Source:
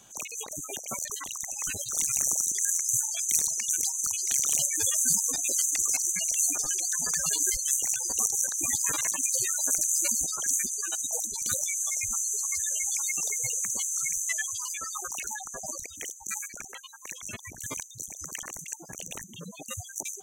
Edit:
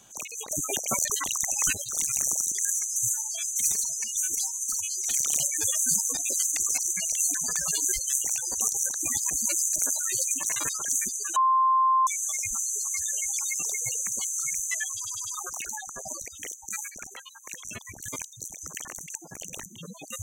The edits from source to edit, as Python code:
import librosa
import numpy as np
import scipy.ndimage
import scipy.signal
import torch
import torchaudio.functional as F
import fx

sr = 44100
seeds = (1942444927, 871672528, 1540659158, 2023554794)

y = fx.edit(x, sr, fx.clip_gain(start_s=0.49, length_s=1.24, db=7.5),
    fx.stretch_span(start_s=2.74, length_s=1.62, factor=1.5),
    fx.cut(start_s=6.53, length_s=0.39),
    fx.reverse_span(start_s=8.88, length_s=1.39),
    fx.bleep(start_s=10.94, length_s=0.71, hz=1050.0, db=-18.0),
    fx.stutter_over(start_s=14.53, slice_s=0.1, count=4), tone=tone)